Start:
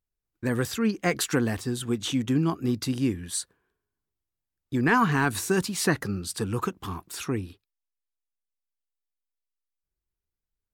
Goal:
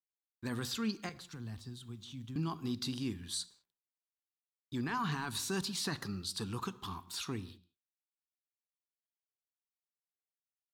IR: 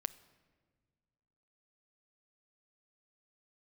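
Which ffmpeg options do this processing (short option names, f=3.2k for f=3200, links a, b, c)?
-filter_complex "[0:a]equalizer=f=500:t=o:w=1:g=-6,equalizer=f=1k:t=o:w=1:g=5,equalizer=f=2k:t=o:w=1:g=-4,equalizer=f=4k:t=o:w=1:g=12,alimiter=limit=-18dB:level=0:latency=1:release=16,asettb=1/sr,asplit=3[a][b][c];[a]atrim=end=1.094[d];[b]atrim=start=1.09:end=2.36,asetpts=PTS-STARTPTS,afade=t=in:d=0.004:c=qsin,afade=t=out:st=1.266:d=0.004:c=qsin,acrossover=split=150[e][f];[f]acompressor=threshold=-52dB:ratio=2[g];[e][g]amix=inputs=2:normalize=0[h];[c]atrim=start=2.356[i];[d][h]acrossfade=d=0.004:c1=hsin:c2=qsin[j];[j][i]acrossfade=d=0.004:c1=qsin:c2=hsin,acrusher=bits=10:mix=0:aa=0.000001[k];[1:a]atrim=start_sample=2205,afade=t=out:st=0.34:d=0.01,atrim=end_sample=15435,asetrate=61740,aresample=44100[l];[k][l]afir=irnorm=-1:irlink=0,volume=-5.5dB"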